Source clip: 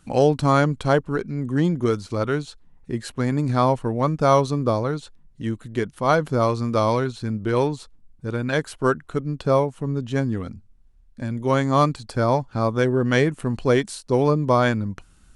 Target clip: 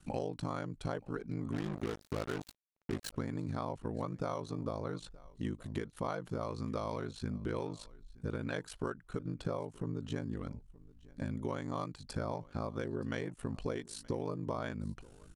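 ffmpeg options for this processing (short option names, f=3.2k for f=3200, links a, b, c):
-filter_complex "[0:a]acompressor=threshold=-28dB:ratio=20,aeval=exprs='val(0)*sin(2*PI*26*n/s)':c=same,asplit=2[a][b];[b]aecho=0:1:924:0.075[c];[a][c]amix=inputs=2:normalize=0,asplit=3[d][e][f];[d]afade=t=out:st=1.52:d=0.02[g];[e]acrusher=bits=5:mix=0:aa=0.5,afade=t=in:st=1.52:d=0.02,afade=t=out:st=3.12:d=0.02[h];[f]afade=t=in:st=3.12:d=0.02[i];[g][h][i]amix=inputs=3:normalize=0,volume=-2.5dB"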